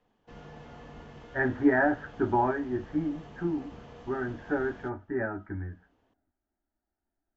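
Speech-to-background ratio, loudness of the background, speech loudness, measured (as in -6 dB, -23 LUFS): 19.0 dB, -49.0 LUFS, -30.0 LUFS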